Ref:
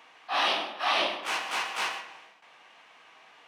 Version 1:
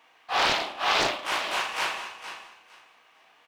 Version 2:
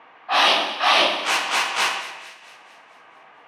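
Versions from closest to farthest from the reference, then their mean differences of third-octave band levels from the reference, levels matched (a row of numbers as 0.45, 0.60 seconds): 2, 1; 2.5, 4.5 decibels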